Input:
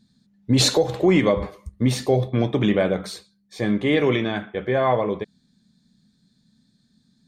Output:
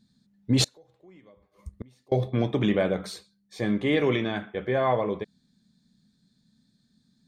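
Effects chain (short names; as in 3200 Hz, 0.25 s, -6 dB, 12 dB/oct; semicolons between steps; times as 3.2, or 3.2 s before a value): 0.64–2.12 flipped gate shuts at -22 dBFS, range -32 dB; gain -4 dB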